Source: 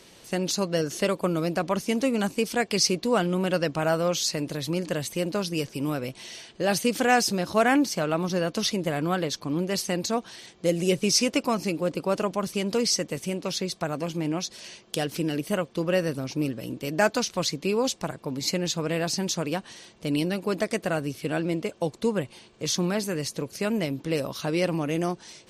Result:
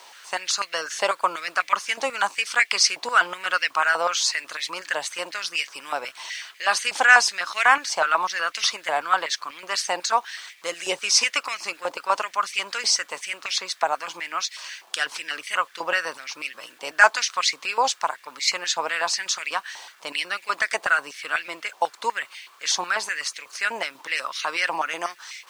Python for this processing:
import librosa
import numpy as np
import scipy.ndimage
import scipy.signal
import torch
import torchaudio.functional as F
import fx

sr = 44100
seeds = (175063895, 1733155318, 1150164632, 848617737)

y = scipy.signal.sosfilt(scipy.signal.butter(4, 9100.0, 'lowpass', fs=sr, output='sos'), x)
y = fx.quant_dither(y, sr, seeds[0], bits=10, dither='none')
y = fx.filter_held_highpass(y, sr, hz=8.1, low_hz=860.0, high_hz=2100.0)
y = y * 10.0 ** (4.0 / 20.0)